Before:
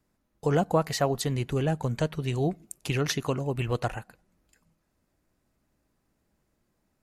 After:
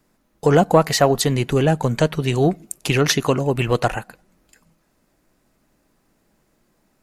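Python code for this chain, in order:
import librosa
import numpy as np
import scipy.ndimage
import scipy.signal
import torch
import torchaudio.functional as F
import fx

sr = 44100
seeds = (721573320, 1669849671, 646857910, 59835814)

p1 = fx.peak_eq(x, sr, hz=74.0, db=-10.5, octaves=1.2)
p2 = 10.0 ** (-20.5 / 20.0) * np.tanh(p1 / 10.0 ** (-20.5 / 20.0))
p3 = p1 + (p2 * 10.0 ** (-8.0 / 20.0))
y = p3 * 10.0 ** (8.5 / 20.0)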